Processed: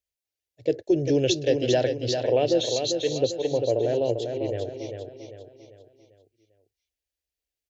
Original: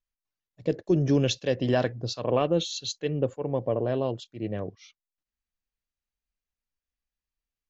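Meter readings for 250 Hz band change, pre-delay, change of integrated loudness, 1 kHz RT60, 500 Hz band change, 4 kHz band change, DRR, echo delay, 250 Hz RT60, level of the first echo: +0.5 dB, none, +3.0 dB, none, +4.5 dB, +4.0 dB, none, 0.396 s, none, -6.0 dB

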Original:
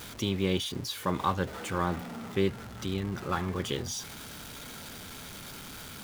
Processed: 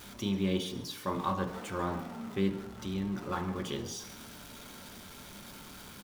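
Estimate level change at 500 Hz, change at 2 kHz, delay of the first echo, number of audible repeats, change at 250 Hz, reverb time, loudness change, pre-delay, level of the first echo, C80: -4.0 dB, -5.5 dB, 0.137 s, 1, -0.5 dB, 0.75 s, -1.5 dB, 3 ms, -17.0 dB, 11.0 dB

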